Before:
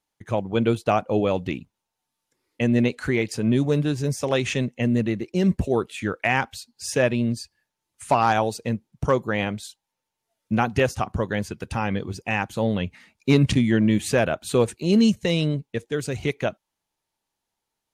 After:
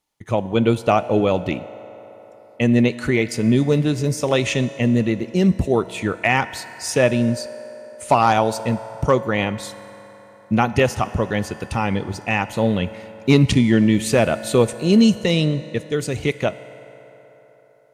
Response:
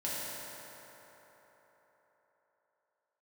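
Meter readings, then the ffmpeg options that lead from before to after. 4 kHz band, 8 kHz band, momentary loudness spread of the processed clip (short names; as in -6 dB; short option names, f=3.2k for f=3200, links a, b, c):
+4.5 dB, +4.5 dB, 12 LU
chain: -filter_complex "[0:a]bandreject=f=1.6k:w=10,asplit=2[a][b];[1:a]atrim=start_sample=2205,lowshelf=f=460:g=-8[c];[b][c]afir=irnorm=-1:irlink=0,volume=-16dB[d];[a][d]amix=inputs=2:normalize=0,volume=3.5dB"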